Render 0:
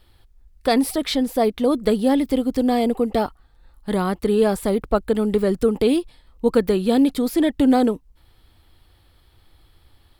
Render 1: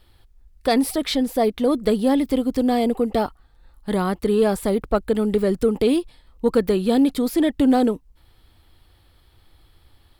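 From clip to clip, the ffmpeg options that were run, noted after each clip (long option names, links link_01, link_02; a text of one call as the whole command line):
ffmpeg -i in.wav -af "asoftclip=type=tanh:threshold=-5.5dB" out.wav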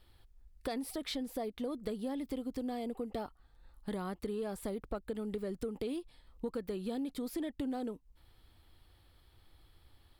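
ffmpeg -i in.wav -af "acompressor=threshold=-28dB:ratio=5,volume=-8dB" out.wav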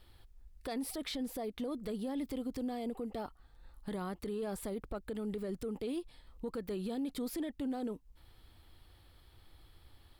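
ffmpeg -i in.wav -af "alimiter=level_in=10dB:limit=-24dB:level=0:latency=1:release=22,volume=-10dB,volume=3dB" out.wav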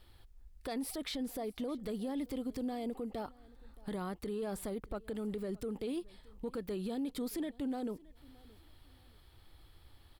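ffmpeg -i in.wav -af "aecho=1:1:621|1242:0.0668|0.0194" out.wav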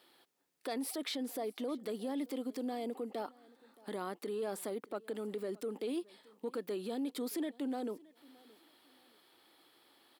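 ffmpeg -i in.wav -af "highpass=frequency=250:width=0.5412,highpass=frequency=250:width=1.3066,volume=1.5dB" out.wav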